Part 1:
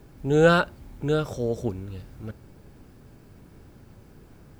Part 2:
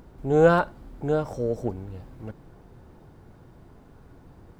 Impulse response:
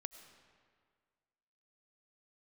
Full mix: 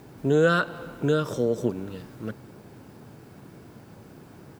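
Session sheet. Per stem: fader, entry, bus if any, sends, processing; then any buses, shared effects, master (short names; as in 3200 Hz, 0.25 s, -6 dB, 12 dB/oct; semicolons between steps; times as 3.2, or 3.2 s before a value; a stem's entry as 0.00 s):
+1.5 dB, 0.00 s, send -5.5 dB, HPF 110 Hz 24 dB/oct
+1.0 dB, 0.8 ms, no send, HPF 220 Hz 6 dB/oct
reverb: on, RT60 1.9 s, pre-delay 60 ms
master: compressor 2.5:1, threshold -20 dBFS, peak gain reduction 9 dB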